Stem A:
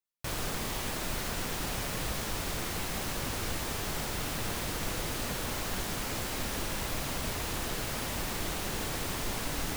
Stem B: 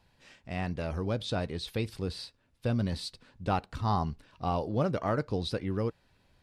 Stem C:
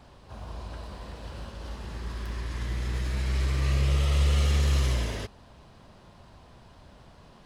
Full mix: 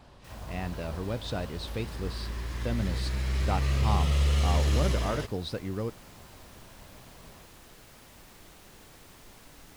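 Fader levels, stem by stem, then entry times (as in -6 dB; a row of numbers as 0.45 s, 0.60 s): -18.0 dB, -2.0 dB, -1.5 dB; 0.00 s, 0.00 s, 0.00 s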